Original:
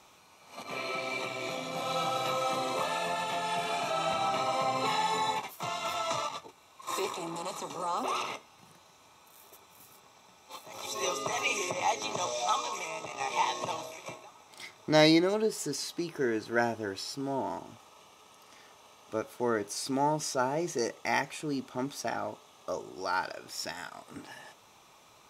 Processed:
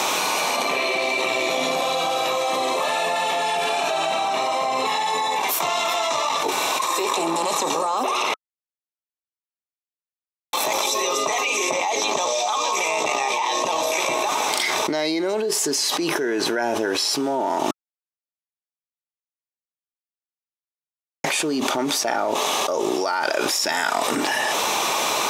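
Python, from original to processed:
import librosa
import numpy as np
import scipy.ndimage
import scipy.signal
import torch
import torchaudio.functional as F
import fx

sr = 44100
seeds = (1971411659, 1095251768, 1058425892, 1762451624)

y = fx.edit(x, sr, fx.silence(start_s=8.34, length_s=2.19),
    fx.silence(start_s=17.71, length_s=3.53), tone=tone)
y = scipy.signal.sosfilt(scipy.signal.butter(2, 300.0, 'highpass', fs=sr, output='sos'), y)
y = fx.notch(y, sr, hz=1300.0, q=15.0)
y = fx.env_flatten(y, sr, amount_pct=100)
y = y * librosa.db_to_amplitude(-2.5)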